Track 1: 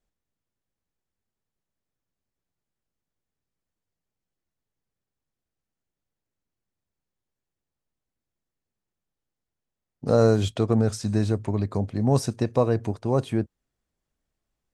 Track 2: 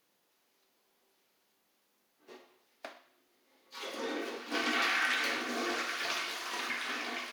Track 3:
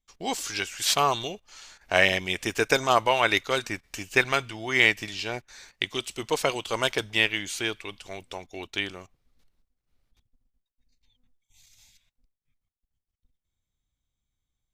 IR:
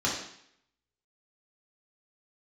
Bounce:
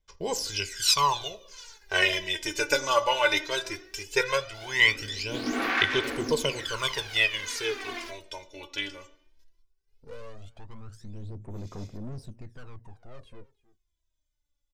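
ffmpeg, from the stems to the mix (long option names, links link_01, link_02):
-filter_complex "[0:a]highshelf=frequency=4200:gain=-10.5,aeval=exprs='(tanh(35.5*val(0)+0.5)-tanh(0.5))/35.5':channel_layout=same,volume=-15dB,asplit=2[link_01][link_02];[link_02]volume=-22dB[link_03];[1:a]equalizer=frequency=190:width=1.5:gain=8,adelay=800,volume=-2.5dB,asplit=2[link_04][link_05];[link_05]volume=-23.5dB[link_06];[2:a]equalizer=frequency=5200:width_type=o:width=0.41:gain=7,aecho=1:1:2:0.71,volume=-7.5dB,asplit=3[link_07][link_08][link_09];[link_08]volume=-20.5dB[link_10];[link_09]apad=whole_len=358118[link_11];[link_04][link_11]sidechaincompress=threshold=-32dB:ratio=8:attack=8:release=594[link_12];[3:a]atrim=start_sample=2205[link_13];[link_06][link_10]amix=inputs=2:normalize=0[link_14];[link_14][link_13]afir=irnorm=-1:irlink=0[link_15];[link_03]aecho=0:1:313:1[link_16];[link_01][link_12][link_07][link_15][link_16]amix=inputs=5:normalize=0,aphaser=in_gain=1:out_gain=1:delay=3.5:decay=0.72:speed=0.17:type=sinusoidal"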